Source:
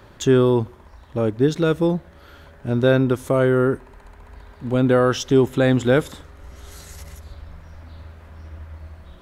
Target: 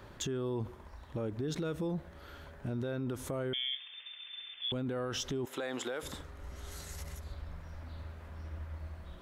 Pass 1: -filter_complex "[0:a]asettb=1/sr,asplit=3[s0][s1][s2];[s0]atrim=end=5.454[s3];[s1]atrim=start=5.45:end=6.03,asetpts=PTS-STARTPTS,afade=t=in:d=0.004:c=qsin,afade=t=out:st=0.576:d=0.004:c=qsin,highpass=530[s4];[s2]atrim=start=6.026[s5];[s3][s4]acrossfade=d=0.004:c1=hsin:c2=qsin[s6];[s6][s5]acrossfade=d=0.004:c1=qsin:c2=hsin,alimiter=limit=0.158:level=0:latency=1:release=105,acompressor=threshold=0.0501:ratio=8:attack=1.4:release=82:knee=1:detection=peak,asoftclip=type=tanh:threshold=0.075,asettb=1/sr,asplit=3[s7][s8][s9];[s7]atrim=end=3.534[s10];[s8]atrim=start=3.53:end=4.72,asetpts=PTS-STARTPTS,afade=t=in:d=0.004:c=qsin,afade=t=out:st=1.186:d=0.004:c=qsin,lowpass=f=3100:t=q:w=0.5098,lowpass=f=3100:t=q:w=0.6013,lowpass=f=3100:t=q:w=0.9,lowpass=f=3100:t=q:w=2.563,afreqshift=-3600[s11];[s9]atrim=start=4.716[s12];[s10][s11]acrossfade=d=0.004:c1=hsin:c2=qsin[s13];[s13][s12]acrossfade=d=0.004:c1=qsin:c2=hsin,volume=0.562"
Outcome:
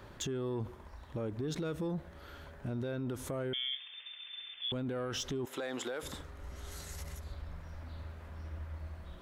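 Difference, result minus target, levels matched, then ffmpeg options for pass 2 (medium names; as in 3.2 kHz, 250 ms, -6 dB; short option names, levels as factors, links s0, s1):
saturation: distortion +18 dB
-filter_complex "[0:a]asettb=1/sr,asplit=3[s0][s1][s2];[s0]atrim=end=5.454[s3];[s1]atrim=start=5.45:end=6.03,asetpts=PTS-STARTPTS,afade=t=in:d=0.004:c=qsin,afade=t=out:st=0.576:d=0.004:c=qsin,highpass=530[s4];[s2]atrim=start=6.026[s5];[s3][s4]acrossfade=d=0.004:c1=hsin:c2=qsin[s6];[s6][s5]acrossfade=d=0.004:c1=qsin:c2=hsin,alimiter=limit=0.158:level=0:latency=1:release=105,acompressor=threshold=0.0501:ratio=8:attack=1.4:release=82:knee=1:detection=peak,asoftclip=type=tanh:threshold=0.224,asettb=1/sr,asplit=3[s7][s8][s9];[s7]atrim=end=3.534[s10];[s8]atrim=start=3.53:end=4.72,asetpts=PTS-STARTPTS,afade=t=in:d=0.004:c=qsin,afade=t=out:st=1.186:d=0.004:c=qsin,lowpass=f=3100:t=q:w=0.5098,lowpass=f=3100:t=q:w=0.6013,lowpass=f=3100:t=q:w=0.9,lowpass=f=3100:t=q:w=2.563,afreqshift=-3600[s11];[s9]atrim=start=4.716[s12];[s10][s11]acrossfade=d=0.004:c1=hsin:c2=qsin[s13];[s13][s12]acrossfade=d=0.004:c1=qsin:c2=hsin,volume=0.562"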